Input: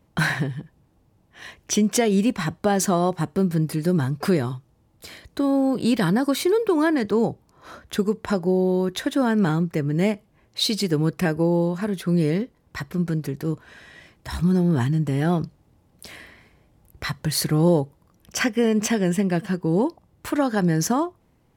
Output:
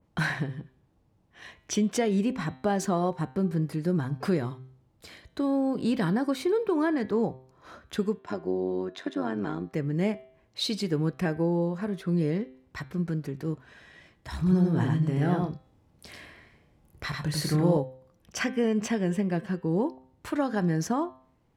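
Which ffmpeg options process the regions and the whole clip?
ffmpeg -i in.wav -filter_complex "[0:a]asettb=1/sr,asplit=3[link_01][link_02][link_03];[link_01]atrim=end=8.194[link_04];[link_02]atrim=start=8.19:end=9.73,asetpts=PTS-STARTPTS,afade=type=in:duration=0.004:curve=qsin,afade=type=out:start_time=1.536:duration=0.004:curve=qsin,tremolo=f=96:d=0.788,highpass=160,lowpass=7000,aecho=1:1:2.9:0.31,atrim=end_sample=67914[link_05];[link_03]atrim=start=9.726[link_06];[link_04][link_05]acrossfade=duration=0.004:curve1=hsin:curve2=qsin[link_07];[link_07][link_06]acrossfade=duration=0.004:curve1=qsin:curve2=hsin,asettb=1/sr,asplit=3[link_08][link_09][link_10];[link_08]atrim=end=14.374[link_11];[link_09]atrim=start=14.37:end=17.77,asetpts=PTS-STARTPTS,afade=type=in:duration=0.004:curve=qsin,afade=type=out:start_time=3.396:duration=0.004:curve=qsin,asplit=2[link_12][link_13];[link_13]adelay=27,volume=-9dB[link_14];[link_12][link_14]amix=inputs=2:normalize=0,atrim=end_sample=149940,aecho=1:1:94:0.708,atrim=end_sample=149940[link_15];[link_10]atrim=start=17.766[link_16];[link_11][link_15]acrossfade=duration=0.004:curve1=hsin:curve2=qsin[link_17];[link_17][link_16]acrossfade=duration=0.004:curve1=qsin:curve2=hsin,highshelf=frequency=10000:gain=-11.5,bandreject=frequency=129.8:width_type=h:width=4,bandreject=frequency=259.6:width_type=h:width=4,bandreject=frequency=389.4:width_type=h:width=4,bandreject=frequency=519.2:width_type=h:width=4,bandreject=frequency=649:width_type=h:width=4,bandreject=frequency=778.8:width_type=h:width=4,bandreject=frequency=908.6:width_type=h:width=4,bandreject=frequency=1038.4:width_type=h:width=4,bandreject=frequency=1168.2:width_type=h:width=4,bandreject=frequency=1298:width_type=h:width=4,bandreject=frequency=1427.8:width_type=h:width=4,bandreject=frequency=1557.6:width_type=h:width=4,bandreject=frequency=1687.4:width_type=h:width=4,bandreject=frequency=1817.2:width_type=h:width=4,bandreject=frequency=1947:width_type=h:width=4,bandreject=frequency=2076.8:width_type=h:width=4,bandreject=frequency=2206.6:width_type=h:width=4,bandreject=frequency=2336.4:width_type=h:width=4,bandreject=frequency=2466.2:width_type=h:width=4,bandreject=frequency=2596:width_type=h:width=4,bandreject=frequency=2725.8:width_type=h:width=4,bandreject=frequency=2855.6:width_type=h:width=4,bandreject=frequency=2985.4:width_type=h:width=4,bandreject=frequency=3115.2:width_type=h:width=4,bandreject=frequency=3245:width_type=h:width=4,bandreject=frequency=3374.8:width_type=h:width=4,bandreject=frequency=3504.6:width_type=h:width=4,bandreject=frequency=3634.4:width_type=h:width=4,bandreject=frequency=3764.2:width_type=h:width=4,bandreject=frequency=3894:width_type=h:width=4,bandreject=frequency=4023.8:width_type=h:width=4,bandreject=frequency=4153.6:width_type=h:width=4,adynamicequalizer=threshold=0.00794:dfrequency=2100:dqfactor=0.7:tfrequency=2100:tqfactor=0.7:attack=5:release=100:ratio=0.375:range=2:mode=cutabove:tftype=highshelf,volume=-5.5dB" out.wav

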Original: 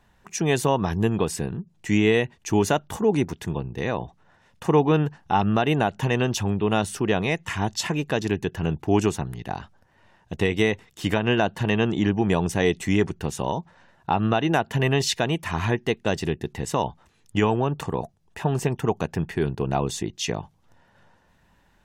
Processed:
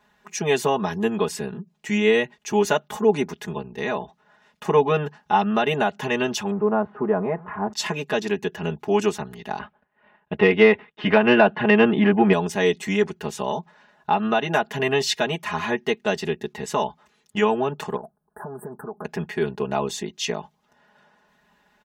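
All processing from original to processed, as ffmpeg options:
ffmpeg -i in.wav -filter_complex "[0:a]asettb=1/sr,asplit=3[link_01][link_02][link_03];[link_01]atrim=end=6.514[link_04];[link_02]atrim=start=6.51:end=7.73,asetpts=PTS-STARTPTS,afade=type=in:duration=0.004:curve=qsin,afade=type=out:start_time=1.216:duration=0.004:curve=qsin,aeval=exprs='val(0)+0.5*0.0168*sgn(val(0))':channel_layout=same,lowpass=frequency=1300:width=0.5412,lowpass=frequency=1300:width=1.3066[link_05];[link_03]atrim=start=7.726[link_06];[link_04][link_05]acrossfade=duration=0.004:curve1=hsin:curve2=qsin[link_07];[link_07][link_06]acrossfade=duration=0.004:curve1=qsin:curve2=hsin,asettb=1/sr,asplit=3[link_08][link_09][link_10];[link_08]atrim=end=9.594[link_11];[link_09]atrim=start=9.59:end=12.33,asetpts=PTS-STARTPTS,afade=type=in:duration=0.004:curve=qsin,afade=type=out:start_time=2.736:duration=0.004:curve=qsin,lowpass=frequency=2800:width=0.5412,lowpass=frequency=2800:width=1.3066,agate=range=-33dB:threshold=-52dB:ratio=3:release=100:detection=peak,acontrast=64[link_12];[link_10]atrim=start=12.326[link_13];[link_11][link_12]acrossfade=duration=0.004:curve1=hsin:curve2=qsin[link_14];[link_14][link_13]acrossfade=duration=0.004:curve1=qsin:curve2=hsin,asettb=1/sr,asplit=3[link_15][link_16][link_17];[link_15]atrim=end=17.964[link_18];[link_16]atrim=start=17.96:end=19.05,asetpts=PTS-STARTPTS,afade=type=in:duration=0.004:curve=qsin,afade=type=out:start_time=1.086:duration=0.004:curve=qsin,acompressor=threshold=-29dB:ratio=10:attack=3.2:release=140:knee=1:detection=peak,asuperstop=centerf=3900:order=20:qfactor=0.56[link_19];[link_17]atrim=start=19.046[link_20];[link_18][link_19]acrossfade=duration=0.004:curve1=hsin:curve2=qsin[link_21];[link_21][link_20]acrossfade=duration=0.004:curve1=qsin:curve2=hsin,highpass=frequency=330:poles=1,equalizer=frequency=9800:width=0.92:gain=-6.5,aecho=1:1:4.8:0.95" out.wav

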